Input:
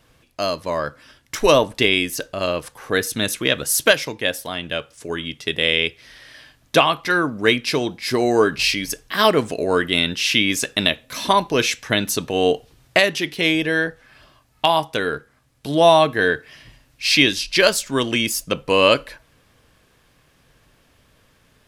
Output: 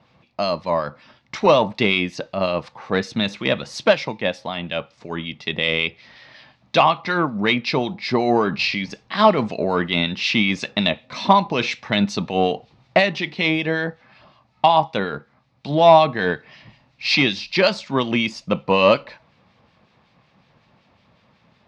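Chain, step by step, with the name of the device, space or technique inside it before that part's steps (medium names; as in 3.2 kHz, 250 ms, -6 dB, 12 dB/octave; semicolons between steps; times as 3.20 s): 7.09–8.91 s: low-pass 7.1 kHz 12 dB/octave; guitar amplifier with harmonic tremolo (harmonic tremolo 5.4 Hz, depth 50%, crossover 1.7 kHz; saturation -7 dBFS, distortion -20 dB; cabinet simulation 110–4300 Hz, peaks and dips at 200 Hz +7 dB, 290 Hz -6 dB, 430 Hz -6 dB, 840 Hz +5 dB, 1.6 kHz -8 dB, 3.1 kHz -6 dB); trim +4.5 dB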